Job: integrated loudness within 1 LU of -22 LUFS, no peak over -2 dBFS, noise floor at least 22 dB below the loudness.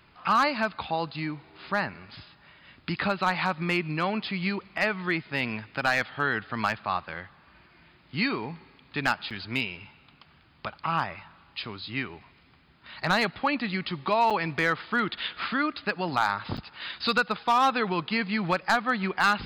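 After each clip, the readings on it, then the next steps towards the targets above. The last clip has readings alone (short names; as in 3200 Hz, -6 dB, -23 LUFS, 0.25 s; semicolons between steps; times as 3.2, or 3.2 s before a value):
clipped 0.3%; flat tops at -15.0 dBFS; dropouts 4; longest dropout 6.1 ms; loudness -28.0 LUFS; peak -15.0 dBFS; loudness target -22.0 LUFS
-> clip repair -15 dBFS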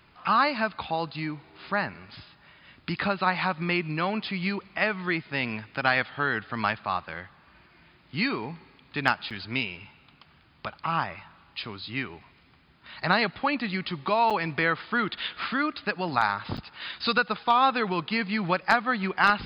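clipped 0.0%; dropouts 4; longest dropout 6.1 ms
-> interpolate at 5.75/9.3/14.3/16.57, 6.1 ms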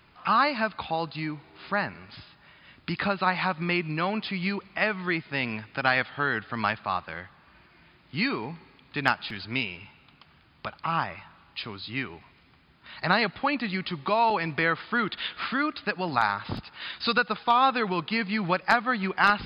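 dropouts 0; loudness -27.5 LUFS; peak -6.0 dBFS; loudness target -22.0 LUFS
-> gain +5.5 dB; limiter -2 dBFS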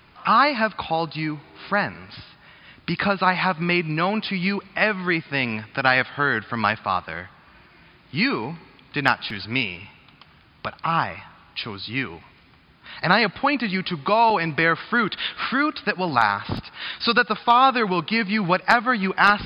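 loudness -22.0 LUFS; peak -2.0 dBFS; noise floor -53 dBFS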